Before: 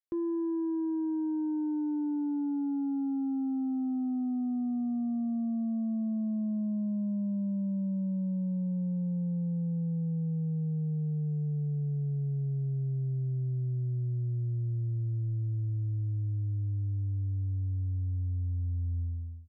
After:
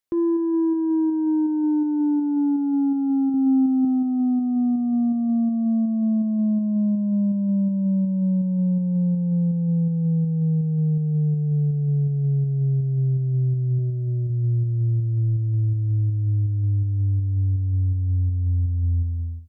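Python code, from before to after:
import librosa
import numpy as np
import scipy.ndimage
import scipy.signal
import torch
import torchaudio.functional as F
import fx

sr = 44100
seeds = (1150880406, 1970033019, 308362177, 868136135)

p1 = fx.low_shelf(x, sr, hz=280.0, db=5.5, at=(3.34, 3.85))
p2 = fx.comb(p1, sr, ms=4.9, depth=0.41, at=(13.78, 14.3))
p3 = fx.volume_shaper(p2, sr, bpm=82, per_beat=2, depth_db=-8, release_ms=170.0, shape='slow start')
p4 = p2 + (p3 * librosa.db_to_amplitude(-1.0))
y = p4 * librosa.db_to_amplitude(5.5)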